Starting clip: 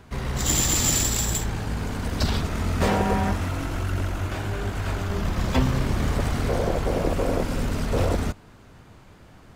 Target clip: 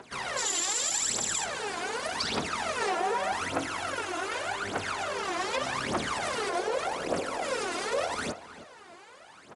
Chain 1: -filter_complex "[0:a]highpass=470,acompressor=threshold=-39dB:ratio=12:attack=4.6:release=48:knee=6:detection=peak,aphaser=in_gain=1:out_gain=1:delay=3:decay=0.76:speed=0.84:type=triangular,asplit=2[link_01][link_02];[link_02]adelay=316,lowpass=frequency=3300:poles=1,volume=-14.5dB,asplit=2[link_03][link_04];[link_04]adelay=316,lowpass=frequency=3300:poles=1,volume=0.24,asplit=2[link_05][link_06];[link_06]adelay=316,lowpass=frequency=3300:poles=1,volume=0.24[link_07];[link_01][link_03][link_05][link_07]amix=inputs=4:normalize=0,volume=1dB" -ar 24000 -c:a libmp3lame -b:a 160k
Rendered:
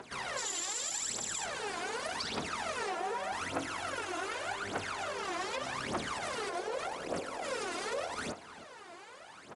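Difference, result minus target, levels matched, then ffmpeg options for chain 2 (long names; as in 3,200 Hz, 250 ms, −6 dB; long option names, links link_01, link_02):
downward compressor: peak gain reduction +7.5 dB
-filter_complex "[0:a]highpass=470,acompressor=threshold=-31dB:ratio=12:attack=4.6:release=48:knee=6:detection=peak,aphaser=in_gain=1:out_gain=1:delay=3:decay=0.76:speed=0.84:type=triangular,asplit=2[link_01][link_02];[link_02]adelay=316,lowpass=frequency=3300:poles=1,volume=-14.5dB,asplit=2[link_03][link_04];[link_04]adelay=316,lowpass=frequency=3300:poles=1,volume=0.24,asplit=2[link_05][link_06];[link_06]adelay=316,lowpass=frequency=3300:poles=1,volume=0.24[link_07];[link_01][link_03][link_05][link_07]amix=inputs=4:normalize=0,volume=1dB" -ar 24000 -c:a libmp3lame -b:a 160k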